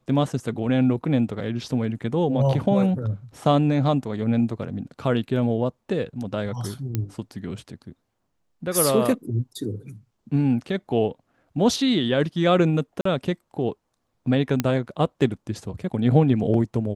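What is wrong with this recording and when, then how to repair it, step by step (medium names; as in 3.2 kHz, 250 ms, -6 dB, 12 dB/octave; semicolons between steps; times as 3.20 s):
6.95 s: pop -12 dBFS
13.01–13.05 s: dropout 44 ms
14.60 s: pop -7 dBFS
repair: de-click; interpolate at 13.01 s, 44 ms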